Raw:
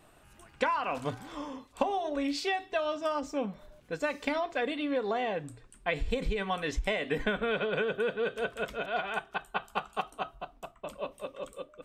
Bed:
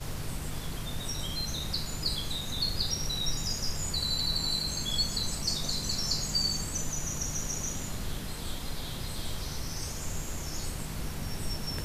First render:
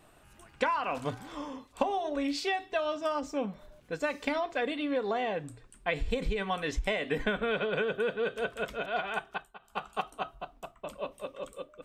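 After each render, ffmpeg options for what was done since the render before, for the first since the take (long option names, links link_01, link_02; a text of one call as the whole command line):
ffmpeg -i in.wav -filter_complex "[0:a]asplit=3[link_01][link_02][link_03];[link_01]atrim=end=9.58,asetpts=PTS-STARTPTS,afade=type=out:start_time=9.3:duration=0.28:silence=0.0891251[link_04];[link_02]atrim=start=9.58:end=9.59,asetpts=PTS-STARTPTS,volume=-21dB[link_05];[link_03]atrim=start=9.59,asetpts=PTS-STARTPTS,afade=type=in:duration=0.28:silence=0.0891251[link_06];[link_04][link_05][link_06]concat=n=3:v=0:a=1" out.wav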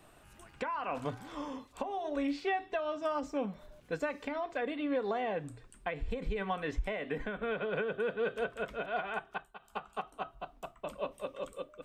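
ffmpeg -i in.wav -filter_complex "[0:a]acrossover=split=110|2600[link_01][link_02][link_03];[link_03]acompressor=threshold=-54dB:ratio=6[link_04];[link_01][link_02][link_04]amix=inputs=3:normalize=0,alimiter=limit=-23.5dB:level=0:latency=1:release=478" out.wav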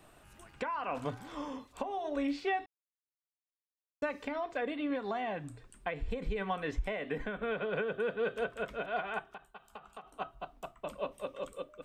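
ffmpeg -i in.wav -filter_complex "[0:a]asettb=1/sr,asplit=3[link_01][link_02][link_03];[link_01]atrim=end=4.904[link_04];[link_02]atrim=start=4.9:end=5.55,asetpts=PTS-STARTPTS,afade=type=in:duration=0.004:curve=qsin,afade=type=out:start_time=0.646:duration=0.004:curve=qsin,equalizer=frequency=470:width_type=o:width=0.29:gain=-11.5[link_05];[link_03]atrim=start=5.546[link_06];[link_04][link_05]acrossfade=duration=0.004:curve1=hsin:curve2=qsin[link_07];[link_07][link_06]acrossfade=duration=0.004:curve1=qsin:curve2=hsin,asettb=1/sr,asplit=3[link_08][link_09][link_10];[link_08]atrim=end=9.284[link_11];[link_09]atrim=start=9.28:end=10.13,asetpts=PTS-STARTPTS,afade=type=in:duration=0.004:curve=qsin,afade=type=out:start_time=0.846:duration=0.004:curve=qsin,acompressor=threshold=-42dB:ratio=12:attack=3.2:release=140:knee=1:detection=peak[link_12];[link_10]atrim=start=10.126[link_13];[link_11][link_12]acrossfade=duration=0.004:curve1=hsin:curve2=qsin[link_14];[link_14][link_13]acrossfade=duration=0.004:curve1=qsin:curve2=hsin,asplit=3[link_15][link_16][link_17];[link_15]atrim=end=2.66,asetpts=PTS-STARTPTS,afade=type=out:start_time=2.656:duration=0.004:curve=hsin[link_18];[link_16]atrim=start=2.66:end=4.02,asetpts=PTS-STARTPTS,volume=0[link_19];[link_17]atrim=start=4.02,asetpts=PTS-STARTPTS,afade=type=in:duration=0.004:curve=hsin[link_20];[link_18][link_19][link_20]concat=n=3:v=0:a=1" out.wav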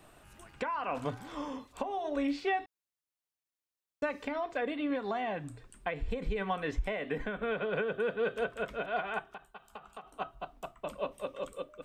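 ffmpeg -i in.wav -af "volume=1.5dB" out.wav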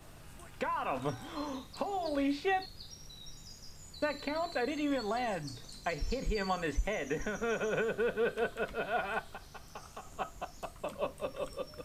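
ffmpeg -i in.wav -i bed.wav -filter_complex "[1:a]volume=-18.5dB[link_01];[0:a][link_01]amix=inputs=2:normalize=0" out.wav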